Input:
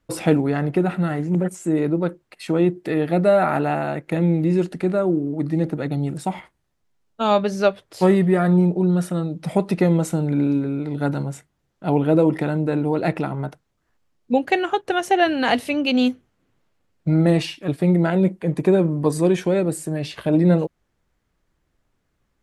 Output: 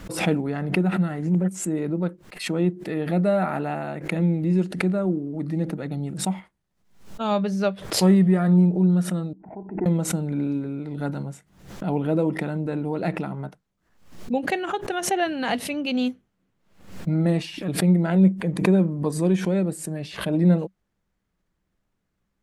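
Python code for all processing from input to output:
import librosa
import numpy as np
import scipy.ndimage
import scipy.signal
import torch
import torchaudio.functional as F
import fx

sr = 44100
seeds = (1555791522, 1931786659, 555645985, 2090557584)

y = fx.chain(x, sr, fx.lowpass(hz=1200.0, slope=24),
    fx.level_steps(step_db=13),
    fx.fixed_phaser(hz=810.0, stages=8), at=(9.33, 9.86))
y = fx.peak_eq(y, sr, hz=190.0, db=10.0, octaves=0.24)
y = fx.pre_swell(y, sr, db_per_s=100.0)
y = y * librosa.db_to_amplitude(-6.5)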